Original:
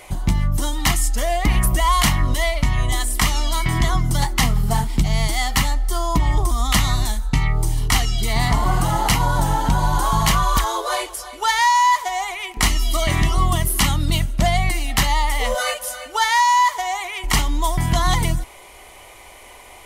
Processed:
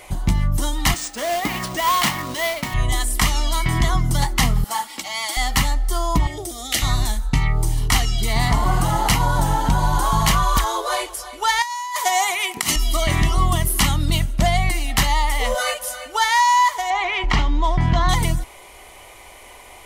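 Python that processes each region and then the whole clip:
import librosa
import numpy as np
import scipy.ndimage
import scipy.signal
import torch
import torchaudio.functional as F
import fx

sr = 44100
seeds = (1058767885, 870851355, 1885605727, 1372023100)

y = fx.chain(x, sr, fx.bandpass_edges(low_hz=220.0, high_hz=7200.0),
    fx.mod_noise(seeds[0], snr_db=12),
    fx.resample_bad(factor=3, down='none', up='hold'), at=(0.94, 2.74))
y = fx.chain(y, sr, fx.highpass(hz=660.0, slope=12),
    fx.comb(ms=3.6, depth=0.69), at=(4.64, 5.37))
y = fx.chain(y, sr, fx.highpass(hz=150.0, slope=12),
    fx.fixed_phaser(hz=430.0, stages=4), at=(6.27, 6.82))
y = fx.chain(y, sr, fx.highpass(hz=110.0, slope=24),
    fx.high_shelf(hz=5100.0, db=9.0),
    fx.over_compress(threshold_db=-20.0, ratio=-0.5), at=(11.62, 12.76))
y = fx.chain(y, sr, fx.air_absorb(metres=190.0),
    fx.env_flatten(amount_pct=50), at=(16.9, 18.09))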